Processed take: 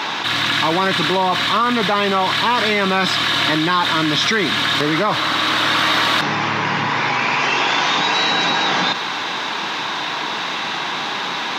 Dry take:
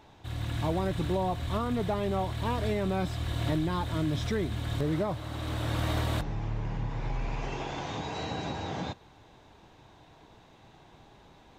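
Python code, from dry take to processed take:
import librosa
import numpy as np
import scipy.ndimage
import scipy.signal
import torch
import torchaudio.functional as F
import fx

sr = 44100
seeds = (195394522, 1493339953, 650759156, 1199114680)

y = scipy.signal.sosfilt(scipy.signal.butter(4, 180.0, 'highpass', fs=sr, output='sos'), x)
y = fx.band_shelf(y, sr, hz=2400.0, db=13.5, octaves=2.9)
y = fx.env_flatten(y, sr, amount_pct=70)
y = y * librosa.db_to_amplitude(6.0)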